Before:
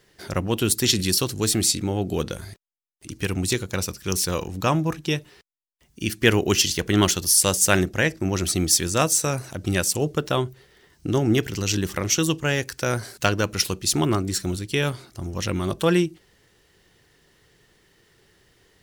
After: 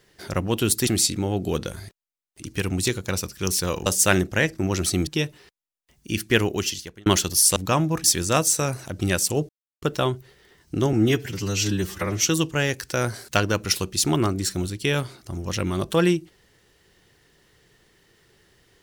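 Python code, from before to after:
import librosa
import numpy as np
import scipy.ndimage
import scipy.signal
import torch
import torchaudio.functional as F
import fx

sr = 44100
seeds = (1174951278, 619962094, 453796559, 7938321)

y = fx.edit(x, sr, fx.cut(start_s=0.87, length_s=0.65),
    fx.swap(start_s=4.51, length_s=0.48, other_s=7.48, other_length_s=1.21),
    fx.fade_out_span(start_s=6.12, length_s=0.86),
    fx.insert_silence(at_s=10.14, length_s=0.33),
    fx.stretch_span(start_s=11.25, length_s=0.86, factor=1.5), tone=tone)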